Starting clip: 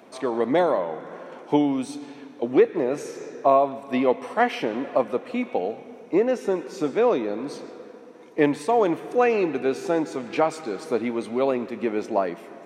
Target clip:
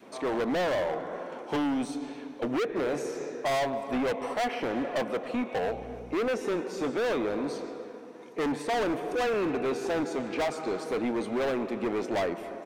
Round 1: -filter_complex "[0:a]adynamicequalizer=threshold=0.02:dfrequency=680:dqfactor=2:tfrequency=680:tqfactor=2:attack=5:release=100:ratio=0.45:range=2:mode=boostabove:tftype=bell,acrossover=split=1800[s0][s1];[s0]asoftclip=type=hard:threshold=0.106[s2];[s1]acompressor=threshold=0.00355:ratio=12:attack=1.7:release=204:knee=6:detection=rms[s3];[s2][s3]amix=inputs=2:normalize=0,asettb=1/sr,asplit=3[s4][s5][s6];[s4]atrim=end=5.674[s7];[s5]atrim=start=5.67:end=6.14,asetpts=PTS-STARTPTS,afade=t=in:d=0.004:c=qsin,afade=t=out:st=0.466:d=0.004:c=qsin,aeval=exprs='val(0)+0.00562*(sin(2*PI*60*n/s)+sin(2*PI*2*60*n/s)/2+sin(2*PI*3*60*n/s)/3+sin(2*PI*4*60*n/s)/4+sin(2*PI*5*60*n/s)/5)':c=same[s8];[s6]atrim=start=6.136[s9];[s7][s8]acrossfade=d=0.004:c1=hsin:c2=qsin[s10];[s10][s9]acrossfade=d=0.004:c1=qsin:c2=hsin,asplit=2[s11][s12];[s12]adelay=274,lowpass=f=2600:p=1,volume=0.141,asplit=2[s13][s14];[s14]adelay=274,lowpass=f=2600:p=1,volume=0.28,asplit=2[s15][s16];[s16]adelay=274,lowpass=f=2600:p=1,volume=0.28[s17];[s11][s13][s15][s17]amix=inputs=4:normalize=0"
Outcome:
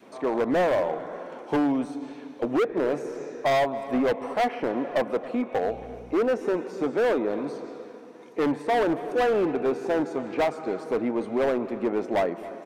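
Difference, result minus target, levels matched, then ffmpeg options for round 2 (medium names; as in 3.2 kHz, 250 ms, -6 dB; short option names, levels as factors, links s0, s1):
compression: peak gain reduction +9 dB; hard clipper: distortion -4 dB
-filter_complex "[0:a]adynamicequalizer=threshold=0.02:dfrequency=680:dqfactor=2:tfrequency=680:tqfactor=2:attack=5:release=100:ratio=0.45:range=2:mode=boostabove:tftype=bell,acrossover=split=1800[s0][s1];[s0]asoftclip=type=hard:threshold=0.0501[s2];[s1]acompressor=threshold=0.0112:ratio=12:attack=1.7:release=204:knee=6:detection=rms[s3];[s2][s3]amix=inputs=2:normalize=0,asettb=1/sr,asplit=3[s4][s5][s6];[s4]atrim=end=5.674[s7];[s5]atrim=start=5.67:end=6.14,asetpts=PTS-STARTPTS,afade=t=in:d=0.004:c=qsin,afade=t=out:st=0.466:d=0.004:c=qsin,aeval=exprs='val(0)+0.00562*(sin(2*PI*60*n/s)+sin(2*PI*2*60*n/s)/2+sin(2*PI*3*60*n/s)/3+sin(2*PI*4*60*n/s)/4+sin(2*PI*5*60*n/s)/5)':c=same[s8];[s6]atrim=start=6.136[s9];[s7][s8]acrossfade=d=0.004:c1=hsin:c2=qsin[s10];[s10][s9]acrossfade=d=0.004:c1=qsin:c2=hsin,asplit=2[s11][s12];[s12]adelay=274,lowpass=f=2600:p=1,volume=0.141,asplit=2[s13][s14];[s14]adelay=274,lowpass=f=2600:p=1,volume=0.28,asplit=2[s15][s16];[s16]adelay=274,lowpass=f=2600:p=1,volume=0.28[s17];[s11][s13][s15][s17]amix=inputs=4:normalize=0"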